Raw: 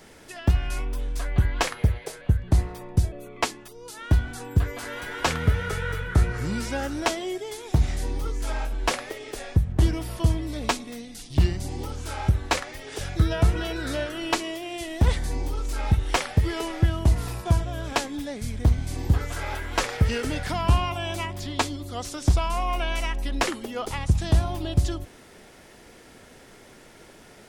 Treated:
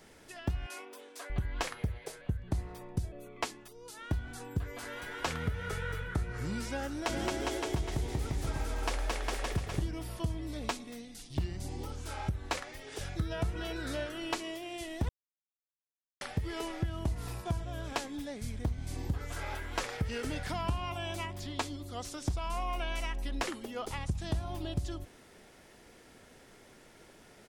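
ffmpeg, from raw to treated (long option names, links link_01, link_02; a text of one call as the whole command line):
ffmpeg -i in.wav -filter_complex "[0:a]asettb=1/sr,asplit=3[link_01][link_02][link_03];[link_01]atrim=end=0.664[link_04];[link_02]atrim=start=0.66:end=1.3,asetpts=PTS-STARTPTS,afade=type=in:duration=0.004:curve=qsin,afade=type=out:start_time=0.636:duration=0.004:curve=qsin,highpass=frequency=330:width=0.5412,highpass=frequency=330:width=1.3066[link_05];[link_03]atrim=start=1.296[link_06];[link_04][link_05]acrossfade=duration=0.004:curve1=hsin:curve2=qsin[link_07];[link_07][link_06]acrossfade=duration=0.004:curve1=qsin:curve2=hsin,asplit=3[link_08][link_09][link_10];[link_08]afade=type=out:start_time=7.08:duration=0.02[link_11];[link_09]aecho=1:1:220|407|566|701.1|815.9:0.794|0.631|0.501|0.398|0.316,afade=type=in:start_time=7.08:duration=0.02,afade=type=out:start_time=9.8:duration=0.02[link_12];[link_10]afade=type=in:start_time=9.8:duration=0.02[link_13];[link_11][link_12][link_13]amix=inputs=3:normalize=0,asplit=3[link_14][link_15][link_16];[link_14]atrim=end=15.09,asetpts=PTS-STARTPTS,afade=type=out:start_time=15.086:duration=0.004:curve=hsin[link_17];[link_15]atrim=start=15.09:end=16.21,asetpts=PTS-STARTPTS,volume=0[link_18];[link_16]atrim=start=16.21,asetpts=PTS-STARTPTS,afade=type=in:duration=0.004:curve=hsin[link_19];[link_17][link_18][link_19]concat=n=3:v=0:a=1,acompressor=threshold=-21dB:ratio=6,volume=-7.5dB" out.wav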